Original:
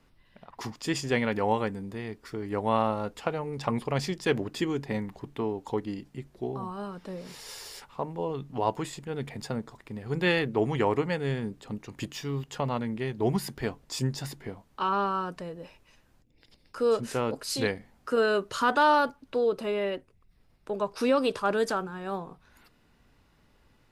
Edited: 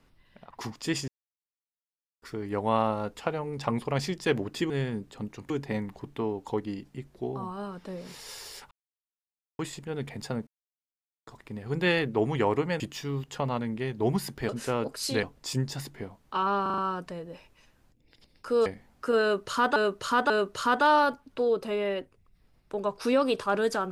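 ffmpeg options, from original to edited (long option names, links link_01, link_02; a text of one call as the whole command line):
ffmpeg -i in.wav -filter_complex "[0:a]asplit=18[link_01][link_02][link_03][link_04][link_05][link_06][link_07][link_08][link_09][link_10][link_11][link_12][link_13][link_14][link_15][link_16][link_17][link_18];[link_01]atrim=end=1.08,asetpts=PTS-STARTPTS,afade=type=out:start_time=1.076:duration=0.004:curve=hsin[link_19];[link_02]atrim=start=1.08:end=2.22,asetpts=PTS-STARTPTS,volume=0[link_20];[link_03]atrim=start=2.22:end=4.702,asetpts=PTS-STARTPTS,afade=type=in:duration=0.004:curve=hsin[link_21];[link_04]atrim=start=11.198:end=12.002[link_22];[link_05]atrim=start=4.698:end=7.91,asetpts=PTS-STARTPTS,afade=type=out:start_time=3.208:duration=0.004:curve=hsin[link_23];[link_06]atrim=start=7.91:end=8.79,asetpts=PTS-STARTPTS,volume=0[link_24];[link_07]atrim=start=8.79:end=9.67,asetpts=PTS-STARTPTS,afade=type=in:duration=0.004:curve=hsin,afade=type=out:start_time=0.876:duration=0.004:curve=hsin,apad=pad_dur=0.8[link_25];[link_08]atrim=start=9.67:end=11.202,asetpts=PTS-STARTPTS,afade=type=in:duration=0.004:curve=hsin[link_26];[link_09]atrim=start=11.998:end=13.692[link_27];[link_10]atrim=start=16.958:end=17.702[link_28];[link_11]atrim=start=13.688:end=15.122[link_29];[link_12]atrim=start=15.078:end=15.122[link_30];[link_13]atrim=start=15.078:end=15.122[link_31];[link_14]atrim=start=15.078:end=15.122[link_32];[link_15]atrim=start=15.078:end=16.962[link_33];[link_16]atrim=start=17.698:end=18.802[link_34];[link_17]atrim=start=18.258:end=18.802[link_35];[link_18]atrim=start=18.258[link_36];[link_19][link_20][link_21]concat=n=3:v=0:a=1[link_37];[link_37][link_22]acrossfade=duration=0.004:curve1=hsin:curve2=hsin[link_38];[link_23][link_24][link_25][link_26]concat=n=4:v=0:a=1[link_39];[link_38][link_39]acrossfade=duration=0.004:curve1=hsin:curve2=hsin[link_40];[link_40][link_27]acrossfade=duration=0.004:curve1=hsin:curve2=hsin[link_41];[link_41][link_28]acrossfade=duration=0.004:curve1=hsin:curve2=hsin[link_42];[link_42][link_29]acrossfade=duration=0.004:curve1=hsin:curve2=hsin[link_43];[link_43][link_30]acrossfade=duration=0.004:curve1=hsin:curve2=hsin[link_44];[link_44][link_31]acrossfade=duration=0.004:curve1=hsin:curve2=hsin[link_45];[link_45][link_32]acrossfade=duration=0.004:curve1=hsin:curve2=hsin[link_46];[link_46][link_33]acrossfade=duration=0.004:curve1=hsin:curve2=hsin[link_47];[link_47][link_34]acrossfade=duration=0.004:curve1=hsin:curve2=hsin[link_48];[link_48][link_35]acrossfade=duration=0.004:curve1=hsin:curve2=hsin[link_49];[link_49][link_36]acrossfade=duration=0.004:curve1=hsin:curve2=hsin" out.wav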